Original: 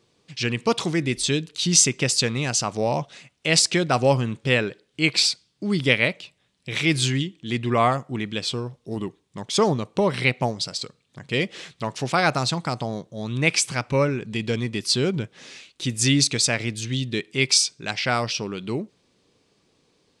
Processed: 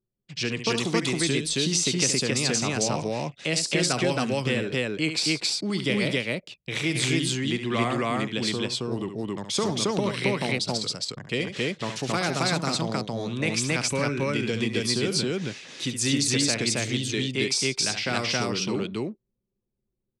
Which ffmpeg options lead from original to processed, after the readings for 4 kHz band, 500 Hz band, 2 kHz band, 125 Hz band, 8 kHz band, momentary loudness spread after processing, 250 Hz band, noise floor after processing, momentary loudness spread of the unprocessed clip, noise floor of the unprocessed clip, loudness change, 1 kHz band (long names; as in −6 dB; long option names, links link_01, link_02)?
−2.0 dB, −2.5 dB, −3.0 dB, −3.5 dB, −3.5 dB, 8 LU, −1.0 dB, −82 dBFS, 13 LU, −67 dBFS, −3.0 dB, −5.0 dB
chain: -filter_complex "[0:a]acrossover=split=180|480|1300|5700[link_01][link_02][link_03][link_04][link_05];[link_01]acompressor=threshold=-40dB:ratio=4[link_06];[link_02]acompressor=threshold=-28dB:ratio=4[link_07];[link_03]acompressor=threshold=-39dB:ratio=4[link_08];[link_04]acompressor=threshold=-30dB:ratio=4[link_09];[link_05]acompressor=threshold=-30dB:ratio=4[link_10];[link_06][link_07][link_08][link_09][link_10]amix=inputs=5:normalize=0,anlmdn=0.0158,aecho=1:1:69.97|271.1:0.355|1"